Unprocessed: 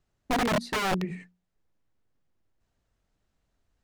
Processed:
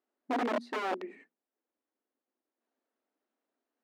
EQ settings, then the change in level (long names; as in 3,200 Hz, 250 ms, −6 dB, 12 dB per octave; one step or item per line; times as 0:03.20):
linear-phase brick-wall high-pass 220 Hz
low-pass filter 1,300 Hz 6 dB per octave
−3.0 dB